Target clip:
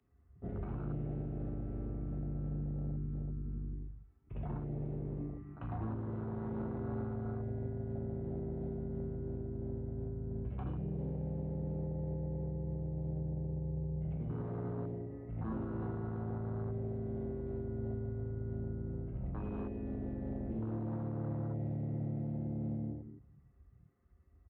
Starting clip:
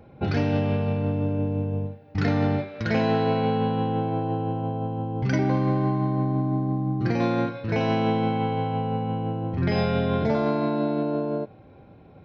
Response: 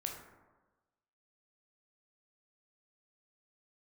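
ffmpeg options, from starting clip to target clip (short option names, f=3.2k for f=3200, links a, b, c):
-filter_complex "[0:a]acrossover=split=280|3000[a][b][c];[a]acompressor=threshold=-30dB:ratio=4[d];[d][b][c]amix=inputs=3:normalize=0,lowshelf=f=150:g=-2.5,acrossover=split=110|1100[e][f][g];[g]acompressor=threshold=-46dB:ratio=10[h];[e][f][h]amix=inputs=3:normalize=0,crystalizer=i=3.5:c=0,aresample=16000,volume=24.5dB,asoftclip=hard,volume=-24.5dB,aresample=44100,highpass=f=59:w=0.5412,highpass=f=59:w=1.3066,highshelf=f=2.4k:g=5,asetrate=22050,aresample=44100,asplit=2[i][j];[j]adelay=199,lowpass=f=2k:p=1,volume=-11dB,asplit=2[k][l];[l]adelay=199,lowpass=f=2k:p=1,volume=0.32,asplit=2[m][n];[n]adelay=199,lowpass=f=2k:p=1,volume=0.32[o];[i][k][m][o]amix=inputs=4:normalize=0[p];[1:a]atrim=start_sample=2205,afade=t=out:st=0.26:d=0.01,atrim=end_sample=11907[q];[p][q]afir=irnorm=-1:irlink=0,afwtdn=0.0224,alimiter=limit=-21.5dB:level=0:latency=1:release=368,volume=-8.5dB"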